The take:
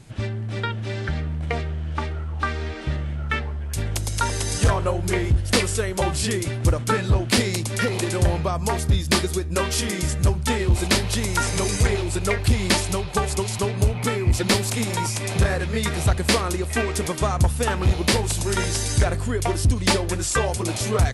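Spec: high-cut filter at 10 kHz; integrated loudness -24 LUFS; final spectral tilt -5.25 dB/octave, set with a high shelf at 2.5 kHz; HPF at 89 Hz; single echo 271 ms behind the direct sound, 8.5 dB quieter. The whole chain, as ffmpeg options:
-af "highpass=89,lowpass=10000,highshelf=f=2500:g=-6.5,aecho=1:1:271:0.376,volume=1.12"

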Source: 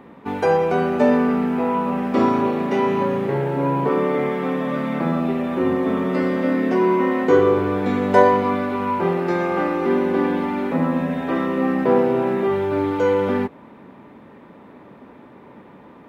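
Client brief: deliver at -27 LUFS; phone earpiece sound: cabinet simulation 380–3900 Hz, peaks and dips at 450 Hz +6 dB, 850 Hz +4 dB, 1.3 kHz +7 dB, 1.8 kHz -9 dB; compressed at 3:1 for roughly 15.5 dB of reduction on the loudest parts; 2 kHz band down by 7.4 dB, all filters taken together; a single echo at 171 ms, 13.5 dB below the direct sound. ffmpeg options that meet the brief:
-af "equalizer=f=2000:t=o:g=-8,acompressor=threshold=0.0251:ratio=3,highpass=380,equalizer=f=450:t=q:w=4:g=6,equalizer=f=850:t=q:w=4:g=4,equalizer=f=1300:t=q:w=4:g=7,equalizer=f=1800:t=q:w=4:g=-9,lowpass=f=3900:w=0.5412,lowpass=f=3900:w=1.3066,aecho=1:1:171:0.211,volume=1.78"

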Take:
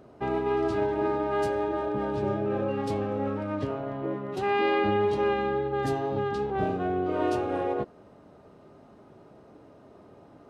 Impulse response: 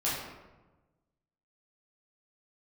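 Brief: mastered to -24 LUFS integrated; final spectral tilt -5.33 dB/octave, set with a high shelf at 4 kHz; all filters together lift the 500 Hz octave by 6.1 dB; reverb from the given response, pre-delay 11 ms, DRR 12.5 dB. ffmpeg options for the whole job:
-filter_complex "[0:a]equalizer=f=500:t=o:g=8,highshelf=f=4000:g=7.5,asplit=2[s0][s1];[1:a]atrim=start_sample=2205,adelay=11[s2];[s1][s2]afir=irnorm=-1:irlink=0,volume=0.0944[s3];[s0][s3]amix=inputs=2:normalize=0,volume=0.944"

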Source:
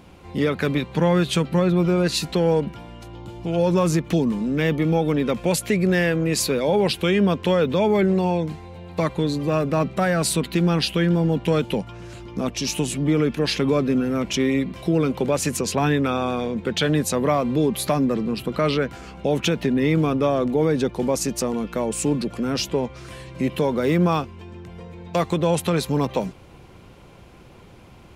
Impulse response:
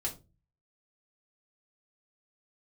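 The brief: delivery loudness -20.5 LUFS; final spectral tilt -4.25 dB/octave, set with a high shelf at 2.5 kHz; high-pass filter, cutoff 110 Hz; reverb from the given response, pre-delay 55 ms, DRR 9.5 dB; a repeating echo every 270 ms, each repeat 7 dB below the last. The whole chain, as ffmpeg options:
-filter_complex "[0:a]highpass=110,highshelf=f=2500:g=7.5,aecho=1:1:270|540|810|1080|1350:0.447|0.201|0.0905|0.0407|0.0183,asplit=2[s0][s1];[1:a]atrim=start_sample=2205,adelay=55[s2];[s1][s2]afir=irnorm=-1:irlink=0,volume=0.251[s3];[s0][s3]amix=inputs=2:normalize=0,volume=0.891"

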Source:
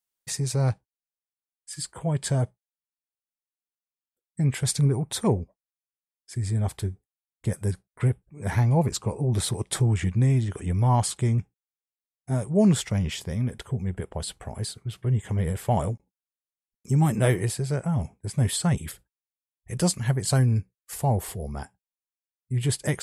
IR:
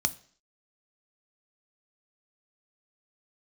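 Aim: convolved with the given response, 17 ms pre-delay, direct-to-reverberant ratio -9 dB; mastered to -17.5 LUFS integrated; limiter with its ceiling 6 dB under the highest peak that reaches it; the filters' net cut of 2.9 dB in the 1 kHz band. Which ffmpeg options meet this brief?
-filter_complex "[0:a]equalizer=f=1000:t=o:g=-4,alimiter=limit=0.141:level=0:latency=1,asplit=2[s0][s1];[1:a]atrim=start_sample=2205,adelay=17[s2];[s1][s2]afir=irnorm=-1:irlink=0,volume=1.41[s3];[s0][s3]amix=inputs=2:normalize=0,volume=0.75"

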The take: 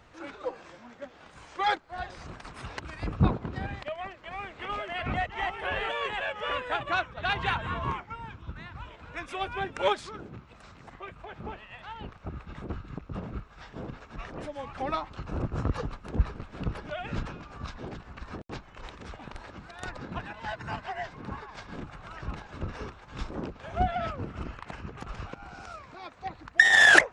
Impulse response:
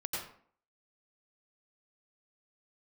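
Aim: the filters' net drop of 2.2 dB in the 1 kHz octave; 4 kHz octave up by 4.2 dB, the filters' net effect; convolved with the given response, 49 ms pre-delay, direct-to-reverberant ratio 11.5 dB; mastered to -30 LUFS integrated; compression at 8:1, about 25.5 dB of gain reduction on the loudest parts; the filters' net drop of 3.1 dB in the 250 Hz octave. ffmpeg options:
-filter_complex "[0:a]equalizer=f=250:t=o:g=-4.5,equalizer=f=1000:t=o:g=-3,equalizer=f=4000:t=o:g=5.5,acompressor=threshold=0.01:ratio=8,asplit=2[s0][s1];[1:a]atrim=start_sample=2205,adelay=49[s2];[s1][s2]afir=irnorm=-1:irlink=0,volume=0.188[s3];[s0][s3]amix=inputs=2:normalize=0,volume=5.31"

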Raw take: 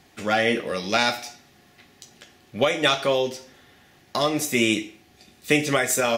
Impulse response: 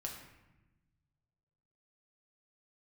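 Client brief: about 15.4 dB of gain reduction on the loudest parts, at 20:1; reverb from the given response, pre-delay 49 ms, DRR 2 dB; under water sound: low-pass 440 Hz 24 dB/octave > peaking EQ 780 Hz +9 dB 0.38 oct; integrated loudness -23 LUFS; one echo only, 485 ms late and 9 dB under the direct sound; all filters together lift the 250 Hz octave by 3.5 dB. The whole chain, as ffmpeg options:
-filter_complex "[0:a]equalizer=f=250:t=o:g=4.5,acompressor=threshold=0.0355:ratio=20,aecho=1:1:485:0.355,asplit=2[s0][s1];[1:a]atrim=start_sample=2205,adelay=49[s2];[s1][s2]afir=irnorm=-1:irlink=0,volume=0.944[s3];[s0][s3]amix=inputs=2:normalize=0,lowpass=f=440:w=0.5412,lowpass=f=440:w=1.3066,equalizer=f=780:t=o:w=0.38:g=9,volume=4.73"

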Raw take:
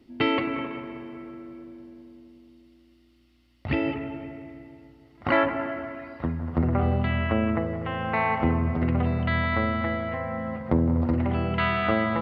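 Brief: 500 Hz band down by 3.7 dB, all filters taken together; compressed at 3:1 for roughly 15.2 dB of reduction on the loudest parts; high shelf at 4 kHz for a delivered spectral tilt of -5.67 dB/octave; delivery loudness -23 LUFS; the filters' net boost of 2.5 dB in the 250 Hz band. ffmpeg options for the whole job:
-af "equalizer=f=250:t=o:g=4.5,equalizer=f=500:t=o:g=-6.5,highshelf=f=4000:g=3.5,acompressor=threshold=0.0126:ratio=3,volume=5.96"

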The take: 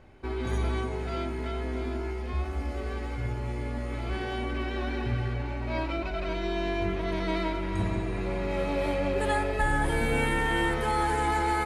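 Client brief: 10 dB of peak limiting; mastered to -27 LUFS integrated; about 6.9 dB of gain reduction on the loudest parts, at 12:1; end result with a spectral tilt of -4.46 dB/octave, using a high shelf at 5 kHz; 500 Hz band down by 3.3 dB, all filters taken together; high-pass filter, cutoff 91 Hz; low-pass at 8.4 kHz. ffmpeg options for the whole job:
-af "highpass=91,lowpass=8400,equalizer=f=500:t=o:g=-4.5,highshelf=f=5000:g=3.5,acompressor=threshold=0.0282:ratio=12,volume=4.22,alimiter=limit=0.119:level=0:latency=1"

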